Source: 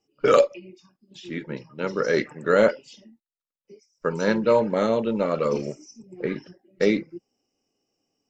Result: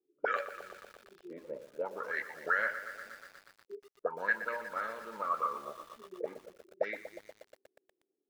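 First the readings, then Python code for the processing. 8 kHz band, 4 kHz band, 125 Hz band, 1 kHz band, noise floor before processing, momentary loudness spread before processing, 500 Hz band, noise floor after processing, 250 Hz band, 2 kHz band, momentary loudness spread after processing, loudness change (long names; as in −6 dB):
can't be measured, −17.5 dB, below −25 dB, −6.5 dB, below −85 dBFS, 16 LU, −18.0 dB, −85 dBFS, −26.0 dB, −2.5 dB, 19 LU, −13.0 dB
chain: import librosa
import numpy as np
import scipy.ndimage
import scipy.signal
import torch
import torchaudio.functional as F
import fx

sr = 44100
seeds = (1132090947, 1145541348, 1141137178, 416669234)

y = fx.auto_wah(x, sr, base_hz=370.0, top_hz=1700.0, q=9.2, full_db=-17.0, direction='up')
y = fx.echo_crushed(y, sr, ms=120, feedback_pct=80, bits=9, wet_db=-12)
y = y * 10.0 ** (4.0 / 20.0)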